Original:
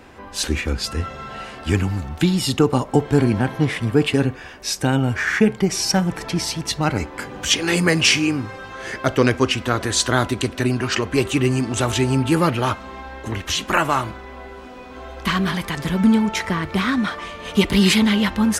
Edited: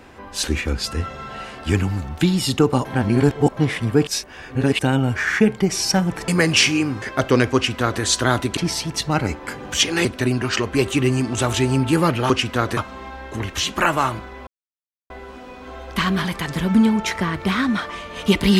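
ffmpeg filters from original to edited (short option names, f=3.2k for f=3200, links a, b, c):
-filter_complex "[0:a]asplit=12[a][b][c][d][e][f][g][h][i][j][k][l];[a]atrim=end=2.852[m];[b]atrim=start=2.848:end=3.572,asetpts=PTS-STARTPTS,areverse[n];[c]atrim=start=3.568:end=4.072[o];[d]atrim=start=4.068:end=4.792,asetpts=PTS-STARTPTS,areverse[p];[e]atrim=start=4.788:end=6.282[q];[f]atrim=start=7.758:end=8.502[r];[g]atrim=start=8.888:end=10.442[s];[h]atrim=start=6.278:end=7.762[t];[i]atrim=start=10.438:end=12.692[u];[j]atrim=start=9.418:end=9.892[v];[k]atrim=start=12.688:end=14.39,asetpts=PTS-STARTPTS,afade=t=out:st=1.698:d=0.004:c=hsin,apad=pad_dur=0.63[w];[l]atrim=start=14.39,asetpts=PTS-STARTPTS,afade=t=in:d=0.004:c=hsin[x];[m][n]acrossfade=d=0.004:c1=hsin:c2=hsin[y];[y][o]acrossfade=d=0.004:c1=hsin:c2=hsin[z];[z][p]acrossfade=d=0.004:c1=hsin:c2=hsin[aa];[aa][q]acrossfade=d=0.004:c1=hsin:c2=hsin[ab];[ab][r]acrossfade=d=0.004:c1=hsin:c2=hsin[ac];[ac][s]acrossfade=d=0.004:c1=hsin:c2=hsin[ad];[ad][t]acrossfade=d=0.004:c1=hsin:c2=hsin[ae];[ae][u]acrossfade=d=0.004:c1=hsin:c2=hsin[af];[af][v]acrossfade=d=0.004:c1=hsin:c2=hsin[ag];[w][x]concat=n=2:v=0:a=1[ah];[ag][ah]acrossfade=d=0.004:c1=hsin:c2=hsin"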